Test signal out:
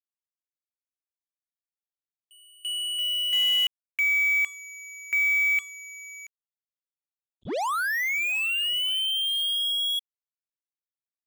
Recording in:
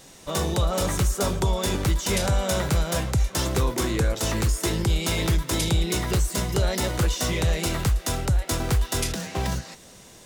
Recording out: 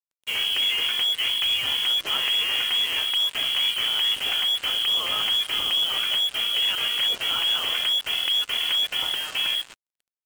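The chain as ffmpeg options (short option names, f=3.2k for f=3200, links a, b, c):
-af "aeval=exprs='0.2*(cos(1*acos(clip(val(0)/0.2,-1,1)))-cos(1*PI/2))+0.01*(cos(2*acos(clip(val(0)/0.2,-1,1)))-cos(2*PI/2))+0.00398*(cos(3*acos(clip(val(0)/0.2,-1,1)))-cos(3*PI/2))+0.0398*(cos(5*acos(clip(val(0)/0.2,-1,1)))-cos(5*PI/2))':c=same,lowpass=f=2.9k:t=q:w=0.5098,lowpass=f=2.9k:t=q:w=0.6013,lowpass=f=2.9k:t=q:w=0.9,lowpass=f=2.9k:t=q:w=2.563,afreqshift=-3400,acrusher=bits=4:mix=0:aa=0.5,volume=-2dB"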